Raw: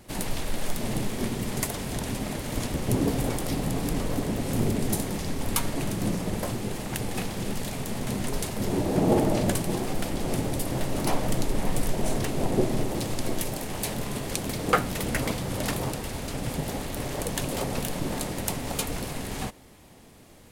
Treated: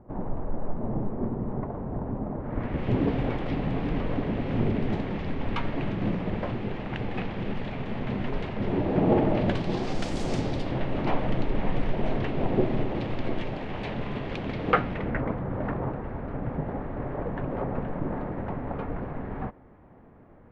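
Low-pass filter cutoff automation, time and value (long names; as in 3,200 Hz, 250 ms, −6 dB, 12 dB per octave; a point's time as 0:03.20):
low-pass filter 24 dB per octave
0:02.36 1,100 Hz
0:02.84 2,900 Hz
0:09.36 2,900 Hz
0:10.20 7,800 Hz
0:10.81 3,000 Hz
0:14.79 3,000 Hz
0:15.26 1,600 Hz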